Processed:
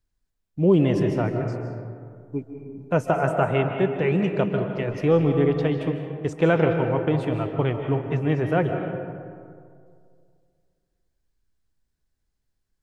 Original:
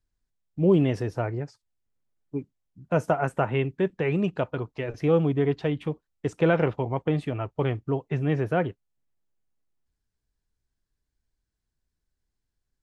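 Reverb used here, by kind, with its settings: digital reverb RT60 2.2 s, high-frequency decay 0.4×, pre-delay 0.11 s, DRR 5 dB; gain +2 dB

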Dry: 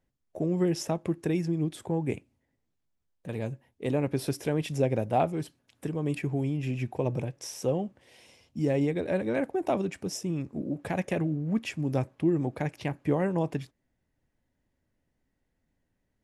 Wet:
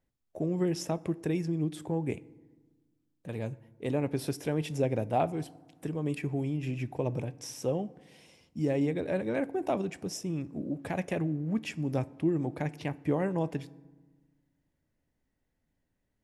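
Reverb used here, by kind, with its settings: FDN reverb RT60 1.3 s, low-frequency decay 1.4×, high-frequency decay 0.5×, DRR 19 dB; gain -2.5 dB

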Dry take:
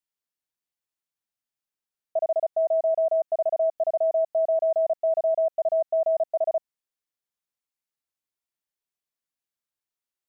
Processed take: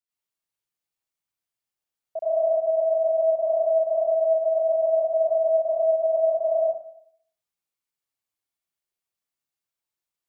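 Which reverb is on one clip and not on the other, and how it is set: plate-style reverb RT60 0.64 s, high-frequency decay 0.85×, pre-delay 80 ms, DRR -7 dB; gain -6 dB

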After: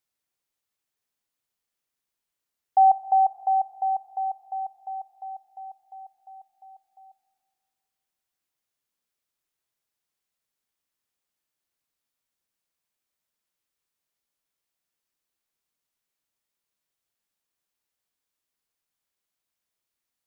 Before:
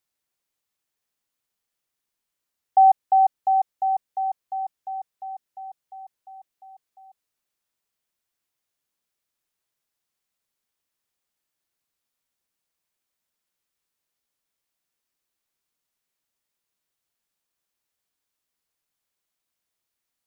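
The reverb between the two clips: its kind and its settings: spring tank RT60 2.2 s, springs 32/40 ms, chirp 75 ms, DRR 14.5 dB; gain -2.5 dB

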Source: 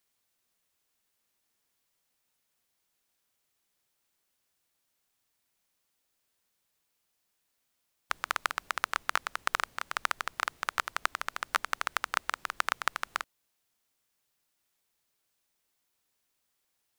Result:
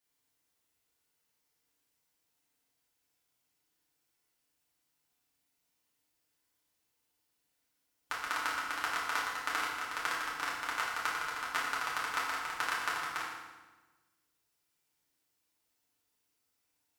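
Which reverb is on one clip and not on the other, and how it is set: FDN reverb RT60 1.2 s, low-frequency decay 1.4×, high-frequency decay 0.85×, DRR -7.5 dB; gain -9.5 dB

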